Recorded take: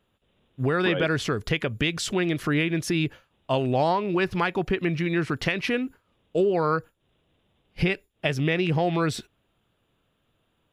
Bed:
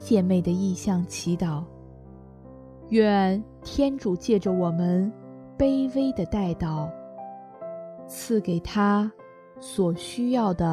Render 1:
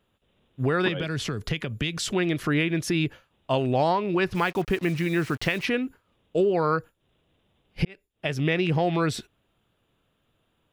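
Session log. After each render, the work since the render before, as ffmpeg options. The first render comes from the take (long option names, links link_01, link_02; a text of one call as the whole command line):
ffmpeg -i in.wav -filter_complex "[0:a]asettb=1/sr,asplit=3[link_01][link_02][link_03];[link_01]atrim=end=0.884[link_04];[link_02]atrim=start=0.88:end=1.99,asetpts=PTS-STARTPTS,afade=type=in:duration=0.004:curve=qsin,afade=type=out:start_time=1.106:duration=0.004:curve=qsin,acrossover=split=220|3000[link_05][link_06][link_07];[link_06]acompressor=threshold=-31dB:ratio=4:attack=3.2:release=140:knee=2.83:detection=peak[link_08];[link_05][link_08][link_07]amix=inputs=3:normalize=0[link_09];[link_03]atrim=start=1.986[link_10];[link_04][link_09]acrossfade=duration=0.004:curve1=hsin:curve2=qsin[link_11];[link_11][link_10]acrossfade=duration=0.004:curve1=qsin:curve2=hsin,asettb=1/sr,asplit=3[link_12][link_13][link_14];[link_12]atrim=end=4.344[link_15];[link_13]atrim=start=4.34:end=5.65,asetpts=PTS-STARTPTS,afade=type=in:duration=0.004:curve=qsin,afade=type=out:start_time=1.306:duration=0.004:curve=qsin,acrusher=bits=6:mix=0:aa=0.5[link_16];[link_14]atrim=start=5.646[link_17];[link_15][link_16]acrossfade=duration=0.004:curve1=hsin:curve2=qsin[link_18];[link_18][link_17]acrossfade=duration=0.004:curve1=qsin:curve2=hsin,asplit=2[link_19][link_20];[link_19]atrim=end=7.85,asetpts=PTS-STARTPTS,afade=type=out:start_time=7.846:duration=0.004:curve=hsin[link_21];[link_20]atrim=start=7.85,asetpts=PTS-STARTPTS,afade=type=in:duration=0.61[link_22];[link_21][link_22]concat=n=2:v=0:a=1" out.wav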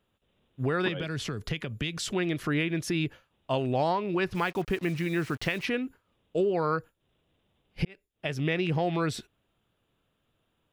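ffmpeg -i in.wav -af "volume=-4dB" out.wav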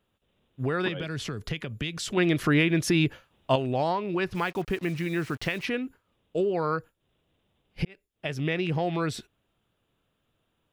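ffmpeg -i in.wav -filter_complex "[0:a]asettb=1/sr,asplit=3[link_01][link_02][link_03];[link_01]atrim=end=2.174[link_04];[link_02]atrim=start=2.17:end=3.56,asetpts=PTS-STARTPTS,afade=type=in:duration=0.004:curve=qsin,afade=type=out:start_time=1.386:duration=0.004:curve=qsin,acontrast=49[link_05];[link_03]atrim=start=3.556[link_06];[link_04][link_05]acrossfade=duration=0.004:curve1=hsin:curve2=qsin[link_07];[link_07][link_06]acrossfade=duration=0.004:curve1=qsin:curve2=hsin" out.wav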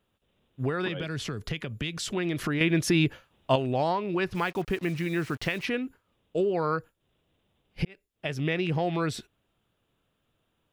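ffmpeg -i in.wav -filter_complex "[0:a]asettb=1/sr,asplit=3[link_01][link_02][link_03];[link_01]atrim=end=0.694[link_04];[link_02]atrim=start=0.69:end=2.61,asetpts=PTS-STARTPTS,afade=type=in:duration=0.004:curve=qsin,afade=type=out:start_time=1.916:duration=0.004:curve=qsin,acompressor=threshold=-24dB:ratio=6:attack=3.2:release=140:knee=1:detection=peak[link_05];[link_03]atrim=start=2.606[link_06];[link_04][link_05]acrossfade=duration=0.004:curve1=hsin:curve2=qsin[link_07];[link_07][link_06]acrossfade=duration=0.004:curve1=qsin:curve2=hsin" out.wav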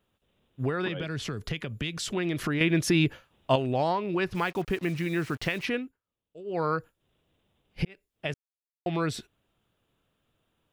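ffmpeg -i in.wav -filter_complex "[0:a]asettb=1/sr,asplit=3[link_01][link_02][link_03];[link_01]atrim=end=0.714[link_04];[link_02]atrim=start=0.71:end=1.23,asetpts=PTS-STARTPTS,afade=type=in:duration=0.004:curve=qsin,afade=type=out:start_time=0.516:duration=0.004:curve=qsin,highshelf=frequency=6200:gain=-5[link_05];[link_03]atrim=start=1.226[link_06];[link_04][link_05]acrossfade=duration=0.004:curve1=hsin:curve2=qsin[link_07];[link_07][link_06]acrossfade=duration=0.004:curve1=qsin:curve2=hsin,asplit=5[link_08][link_09][link_10][link_11][link_12];[link_08]atrim=end=5.92,asetpts=PTS-STARTPTS,afade=type=out:start_time=5.76:duration=0.16:silence=0.11885[link_13];[link_09]atrim=start=5.92:end=6.44,asetpts=PTS-STARTPTS,volume=-18.5dB[link_14];[link_10]atrim=start=6.44:end=8.34,asetpts=PTS-STARTPTS,afade=type=in:duration=0.16:silence=0.11885,afade=type=out:start_time=1.896:duration=0.004:curve=hsin[link_15];[link_11]atrim=start=8.34:end=8.86,asetpts=PTS-STARTPTS,volume=0[link_16];[link_12]atrim=start=8.86,asetpts=PTS-STARTPTS,afade=type=in:duration=0.004:curve=hsin[link_17];[link_13][link_14][link_15][link_16][link_17]concat=n=5:v=0:a=1" out.wav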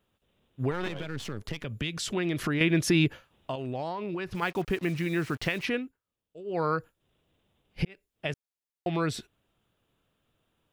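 ffmpeg -i in.wav -filter_complex "[0:a]asettb=1/sr,asplit=3[link_01][link_02][link_03];[link_01]atrim=end=0.714[link_04];[link_02]atrim=start=0.71:end=1.65,asetpts=PTS-STARTPTS,afade=type=in:duration=0.004:curve=qsin,afade=type=out:start_time=0.936:duration=0.004:curve=qsin,aeval=exprs='if(lt(val(0),0),0.251*val(0),val(0))':channel_layout=same[link_05];[link_03]atrim=start=1.646[link_06];[link_04][link_05]acrossfade=duration=0.004:curve1=hsin:curve2=qsin[link_07];[link_07][link_06]acrossfade=duration=0.004:curve1=qsin:curve2=hsin,asplit=3[link_08][link_09][link_10];[link_08]afade=type=out:start_time=3.07:duration=0.02[link_11];[link_09]acompressor=threshold=-29dB:ratio=8:attack=3.2:release=140:knee=1:detection=peak,afade=type=in:start_time=3.07:duration=0.02,afade=type=out:start_time=4.41:duration=0.02[link_12];[link_10]afade=type=in:start_time=4.41:duration=0.02[link_13];[link_11][link_12][link_13]amix=inputs=3:normalize=0" out.wav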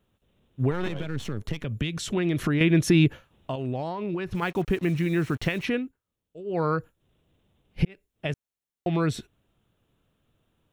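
ffmpeg -i in.wav -af "lowshelf=frequency=360:gain=7,bandreject=frequency=4800:width=10" out.wav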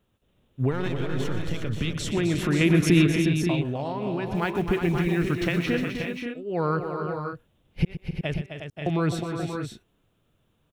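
ffmpeg -i in.wav -af "aecho=1:1:122|260|304|361|532|566:0.224|0.376|0.126|0.376|0.398|0.316" out.wav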